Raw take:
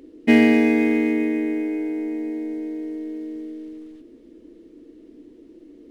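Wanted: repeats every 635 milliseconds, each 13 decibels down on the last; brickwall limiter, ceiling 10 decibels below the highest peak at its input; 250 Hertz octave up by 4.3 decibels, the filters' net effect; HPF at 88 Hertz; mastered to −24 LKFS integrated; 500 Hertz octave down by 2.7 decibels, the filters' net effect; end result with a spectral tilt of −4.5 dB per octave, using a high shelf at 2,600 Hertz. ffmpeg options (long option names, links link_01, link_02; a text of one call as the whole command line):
ffmpeg -i in.wav -af "highpass=88,equalizer=frequency=250:width_type=o:gain=7,equalizer=frequency=500:width_type=o:gain=-7,highshelf=frequency=2600:gain=-5.5,alimiter=limit=-10.5dB:level=0:latency=1,aecho=1:1:635|1270|1905:0.224|0.0493|0.0108,volume=-2.5dB" out.wav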